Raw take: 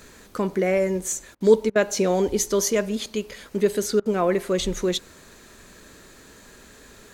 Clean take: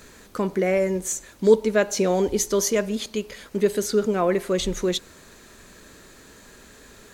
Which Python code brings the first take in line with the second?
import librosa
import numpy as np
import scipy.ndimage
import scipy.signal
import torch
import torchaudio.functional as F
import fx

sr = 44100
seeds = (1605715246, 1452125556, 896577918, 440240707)

y = fx.fix_interpolate(x, sr, at_s=(1.35, 1.7, 4.0), length_ms=54.0)